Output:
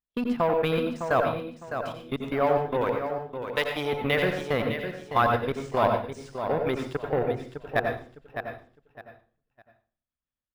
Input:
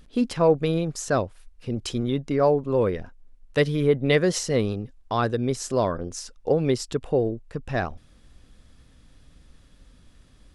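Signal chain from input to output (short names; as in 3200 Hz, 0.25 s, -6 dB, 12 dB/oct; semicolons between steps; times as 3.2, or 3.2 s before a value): one diode to ground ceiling -10.5 dBFS; gate -44 dBFS, range -31 dB; level quantiser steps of 24 dB; 2.81–3.93 tone controls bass -15 dB, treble +13 dB; feedback echo 0.608 s, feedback 26%, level -8 dB; added harmonics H 6 -24 dB, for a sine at -12.5 dBFS; band shelf 1500 Hz +8.5 dB 2.7 oct; reverb RT60 0.40 s, pre-delay 81 ms, DRR 4 dB; decimation joined by straight lines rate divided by 3×; gain -2.5 dB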